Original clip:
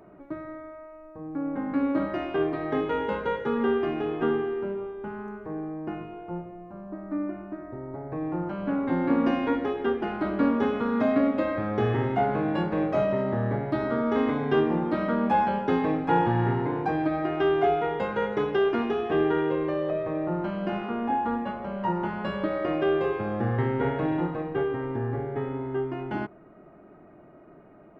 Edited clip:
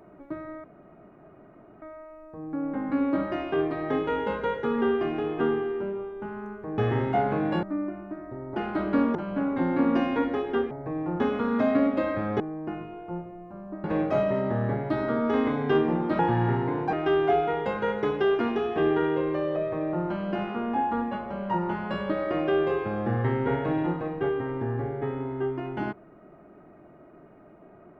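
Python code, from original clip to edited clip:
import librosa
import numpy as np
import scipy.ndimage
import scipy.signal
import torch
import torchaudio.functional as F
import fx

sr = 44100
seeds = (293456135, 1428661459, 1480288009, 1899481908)

y = fx.edit(x, sr, fx.insert_room_tone(at_s=0.64, length_s=1.18),
    fx.swap(start_s=5.6, length_s=1.44, other_s=11.81, other_length_s=0.85),
    fx.swap(start_s=7.97, length_s=0.49, other_s=10.02, other_length_s=0.59),
    fx.cut(start_s=15.01, length_s=1.16),
    fx.cut(start_s=16.91, length_s=0.36), tone=tone)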